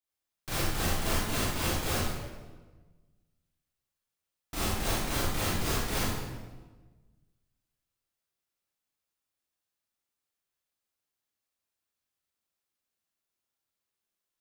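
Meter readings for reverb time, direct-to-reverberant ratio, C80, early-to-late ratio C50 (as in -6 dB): 1.3 s, -10.0 dB, 0.5 dB, -4.0 dB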